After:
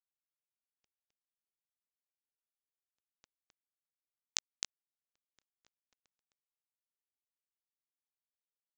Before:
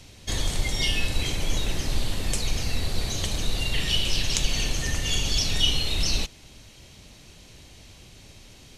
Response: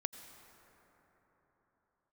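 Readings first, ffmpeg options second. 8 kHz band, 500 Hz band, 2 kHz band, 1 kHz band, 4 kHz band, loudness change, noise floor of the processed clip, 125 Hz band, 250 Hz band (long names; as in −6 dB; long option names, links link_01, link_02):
−16.5 dB, −33.5 dB, −25.5 dB, −25.5 dB, −23.5 dB, −13.0 dB, below −85 dBFS, below −40 dB, −38.5 dB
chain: -filter_complex "[0:a]highpass=frequency=110:width=0.5412,highpass=frequency=110:width=1.3066,lowshelf=frequency=500:width_type=q:width=1.5:gain=8,acompressor=threshold=-28dB:ratio=3,flanger=delay=16.5:depth=2.6:speed=0.63,acrusher=bits=2:mix=0:aa=0.5,aresample=16000,aresample=44100,asplit=2[link_01][link_02];[link_02]aecho=0:1:261:0.531[link_03];[link_01][link_03]amix=inputs=2:normalize=0,volume=8dB"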